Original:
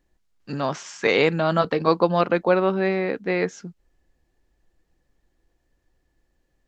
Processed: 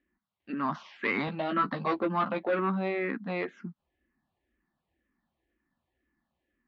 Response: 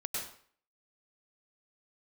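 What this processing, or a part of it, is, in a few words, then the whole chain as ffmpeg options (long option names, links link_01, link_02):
barber-pole phaser into a guitar amplifier: -filter_complex "[0:a]asplit=2[link_01][link_02];[link_02]afreqshift=-2[link_03];[link_01][link_03]amix=inputs=2:normalize=1,asoftclip=type=tanh:threshold=-18dB,highpass=86,equalizer=frequency=120:width_type=q:width=4:gain=-9,equalizer=frequency=230:width_type=q:width=4:gain=8,equalizer=frequency=470:width_type=q:width=4:gain=-9,equalizer=frequency=1100:width_type=q:width=4:gain=5,equalizer=frequency=2000:width_type=q:width=4:gain=3,lowpass=frequency=3600:width=0.5412,lowpass=frequency=3600:width=1.3066,asettb=1/sr,asplit=3[link_04][link_05][link_06];[link_04]atrim=end=1.264[link_07];[link_05]atrim=start=1.26:end=2.59,asetpts=PTS-STARTPTS,afade=type=in:duration=0.004:curve=qsin,afade=type=out:start_time=1.326:duration=0.004:curve=qsin,asplit=2[link_08][link_09];[link_09]adelay=15,volume=-4.5dB[link_10];[link_08][link_10]amix=inputs=2:normalize=0,atrim=end_sample=58653[link_11];[link_06]atrim=start=2.586[link_12];[link_07][link_11]acrossfade=duration=0.004:curve1=hsin:curve2=qsin[link_13];[link_13][link_12]acrossfade=duration=0.004:curve1=qsin:curve2=hsin,volume=-3dB"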